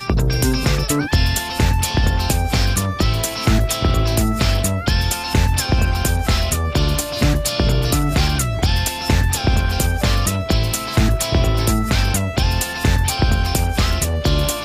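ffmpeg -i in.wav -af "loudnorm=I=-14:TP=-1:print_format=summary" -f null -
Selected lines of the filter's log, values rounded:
Input Integrated:    -18.4 LUFS
Input True Peak:      -5.7 dBTP
Input LRA:             0.4 LU
Input Threshold:     -28.4 LUFS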